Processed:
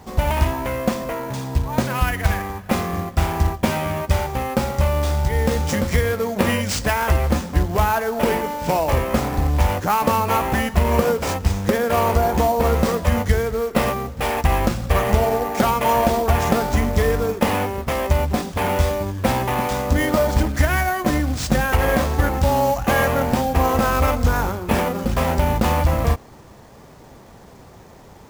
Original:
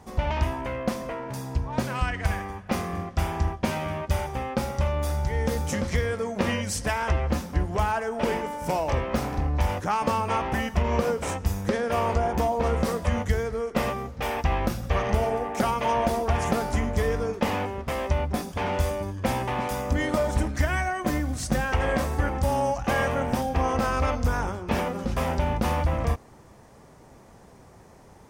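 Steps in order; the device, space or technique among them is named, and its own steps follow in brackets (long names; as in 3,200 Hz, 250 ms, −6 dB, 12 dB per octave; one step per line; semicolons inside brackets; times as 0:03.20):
early companding sampler (sample-rate reduction 13,000 Hz, jitter 0%; log-companded quantiser 6 bits)
level +6.5 dB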